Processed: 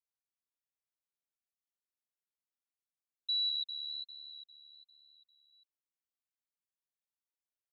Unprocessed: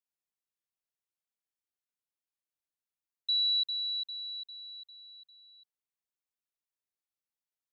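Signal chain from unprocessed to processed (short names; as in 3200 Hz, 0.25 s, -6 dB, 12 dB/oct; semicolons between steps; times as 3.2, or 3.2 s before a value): dynamic EQ 3700 Hz, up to +5 dB, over -41 dBFS; 3.49–5.53 flange 1.2 Hz, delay 0.8 ms, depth 7.7 ms, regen -14%; gain -8.5 dB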